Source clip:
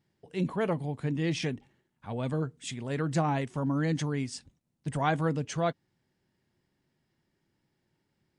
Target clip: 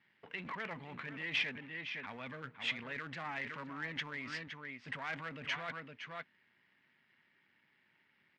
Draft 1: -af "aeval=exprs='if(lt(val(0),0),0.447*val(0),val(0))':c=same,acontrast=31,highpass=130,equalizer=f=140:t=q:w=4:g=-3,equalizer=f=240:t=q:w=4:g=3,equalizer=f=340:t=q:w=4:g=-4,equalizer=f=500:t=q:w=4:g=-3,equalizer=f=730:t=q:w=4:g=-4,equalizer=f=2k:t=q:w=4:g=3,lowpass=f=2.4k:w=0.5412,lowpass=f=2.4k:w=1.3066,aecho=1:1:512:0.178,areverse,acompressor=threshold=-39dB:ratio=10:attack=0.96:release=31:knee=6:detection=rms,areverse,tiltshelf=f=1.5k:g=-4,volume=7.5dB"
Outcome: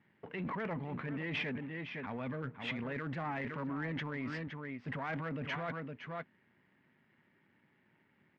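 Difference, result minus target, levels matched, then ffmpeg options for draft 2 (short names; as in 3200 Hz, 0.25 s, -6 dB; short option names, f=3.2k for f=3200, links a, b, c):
2000 Hz band -3.5 dB
-af "aeval=exprs='if(lt(val(0),0),0.447*val(0),val(0))':c=same,acontrast=31,highpass=130,equalizer=f=140:t=q:w=4:g=-3,equalizer=f=240:t=q:w=4:g=3,equalizer=f=340:t=q:w=4:g=-4,equalizer=f=500:t=q:w=4:g=-3,equalizer=f=730:t=q:w=4:g=-4,equalizer=f=2k:t=q:w=4:g=3,lowpass=f=2.4k:w=0.5412,lowpass=f=2.4k:w=1.3066,aecho=1:1:512:0.178,areverse,acompressor=threshold=-39dB:ratio=10:attack=0.96:release=31:knee=6:detection=rms,areverse,tiltshelf=f=1.5k:g=-14.5,volume=7.5dB"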